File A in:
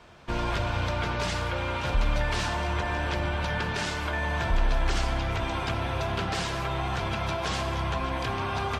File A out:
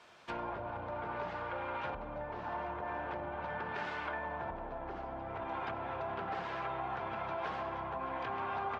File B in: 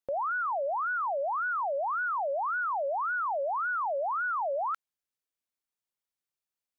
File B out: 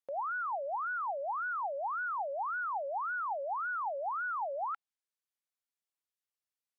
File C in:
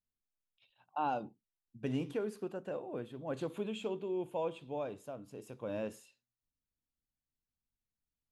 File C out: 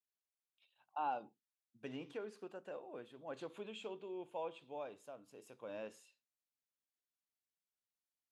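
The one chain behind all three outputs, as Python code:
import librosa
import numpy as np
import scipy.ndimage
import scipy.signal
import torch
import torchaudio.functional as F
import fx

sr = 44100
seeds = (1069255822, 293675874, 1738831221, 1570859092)

y = fx.env_lowpass_down(x, sr, base_hz=780.0, full_db=-23.5)
y = fx.highpass(y, sr, hz=600.0, slope=6)
y = fx.dynamic_eq(y, sr, hz=820.0, q=8.0, threshold_db=-52.0, ratio=4.0, max_db=4)
y = y * 10.0 ** (-4.0 / 20.0)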